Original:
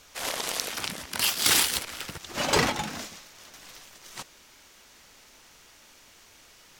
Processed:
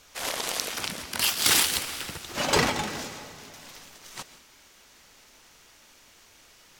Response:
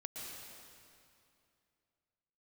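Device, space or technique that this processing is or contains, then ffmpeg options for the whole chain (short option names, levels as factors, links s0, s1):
keyed gated reverb: -filter_complex "[0:a]asplit=3[s0][s1][s2];[1:a]atrim=start_sample=2205[s3];[s1][s3]afir=irnorm=-1:irlink=0[s4];[s2]apad=whole_len=299855[s5];[s4][s5]sidechaingate=range=0.0224:threshold=0.00251:ratio=16:detection=peak,volume=0.473[s6];[s0][s6]amix=inputs=2:normalize=0,volume=0.841"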